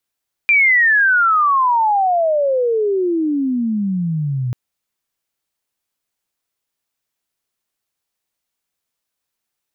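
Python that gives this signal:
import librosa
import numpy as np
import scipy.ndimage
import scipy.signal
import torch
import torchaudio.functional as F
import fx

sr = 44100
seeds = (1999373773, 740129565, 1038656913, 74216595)

y = fx.chirp(sr, length_s=4.04, from_hz=2400.0, to_hz=120.0, law='logarithmic', from_db=-9.0, to_db=-17.5)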